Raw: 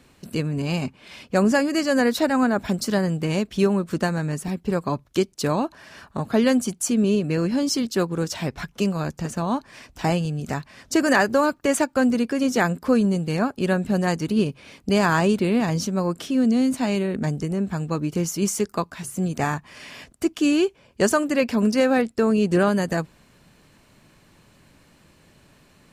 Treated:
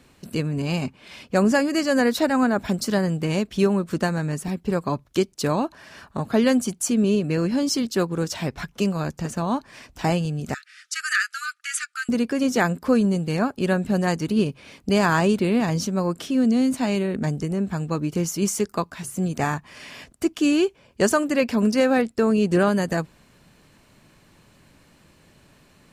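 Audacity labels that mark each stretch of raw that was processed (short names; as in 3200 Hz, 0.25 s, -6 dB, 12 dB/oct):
10.540000	12.090000	brick-wall FIR band-pass 1200–12000 Hz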